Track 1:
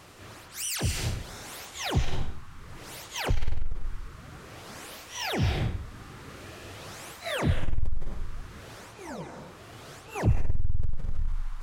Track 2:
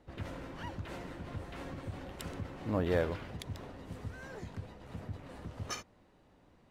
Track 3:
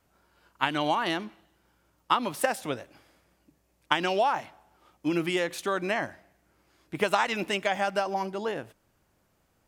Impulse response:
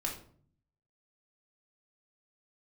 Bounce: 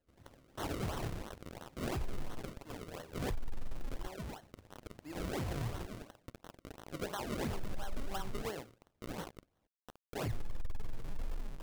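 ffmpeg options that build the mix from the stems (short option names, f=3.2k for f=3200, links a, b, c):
-filter_complex "[0:a]acrusher=bits=5:mix=0:aa=0.000001,volume=-1.5dB[a];[1:a]volume=-17.5dB,asplit=2[b][c];[c]volume=-13.5dB[d];[2:a]lowpass=f=8.9k:w=0.5412,lowpass=f=8.9k:w=1.3066,bandreject=f=60:t=h:w=6,bandreject=f=120:t=h:w=6,bandreject=f=180:t=h:w=6,bandreject=f=240:t=h:w=6,bandreject=f=300:t=h:w=6,bandreject=f=360:t=h:w=6,bandreject=f=420:t=h:w=6,bandreject=f=480:t=h:w=6,bandreject=f=540:t=h:w=6,bandreject=f=600:t=h:w=6,volume=-8.5dB,afade=t=in:st=6.05:d=0.47:silence=0.298538[e];[a][b]amix=inputs=2:normalize=0,flanger=delay=1.6:depth=7.2:regen=42:speed=1.5:shape=triangular,alimiter=limit=-23.5dB:level=0:latency=1:release=27,volume=0dB[f];[3:a]atrim=start_sample=2205[g];[d][g]afir=irnorm=-1:irlink=0[h];[e][f][h]amix=inputs=3:normalize=0,acrusher=samples=36:mix=1:aa=0.000001:lfo=1:lforange=36:lforate=2.9,alimiter=level_in=6dB:limit=-24dB:level=0:latency=1:release=162,volume=-6dB"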